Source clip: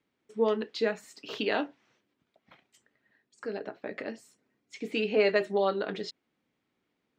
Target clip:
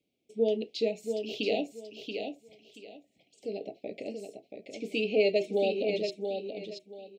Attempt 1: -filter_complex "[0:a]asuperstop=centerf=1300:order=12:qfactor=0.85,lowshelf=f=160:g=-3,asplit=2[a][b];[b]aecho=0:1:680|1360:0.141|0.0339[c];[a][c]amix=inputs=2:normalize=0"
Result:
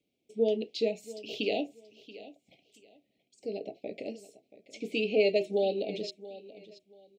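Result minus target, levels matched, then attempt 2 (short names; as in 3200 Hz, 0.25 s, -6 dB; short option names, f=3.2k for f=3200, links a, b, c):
echo-to-direct -11 dB
-filter_complex "[0:a]asuperstop=centerf=1300:order=12:qfactor=0.85,lowshelf=f=160:g=-3,asplit=2[a][b];[b]aecho=0:1:680|1360|2040:0.501|0.12|0.0289[c];[a][c]amix=inputs=2:normalize=0"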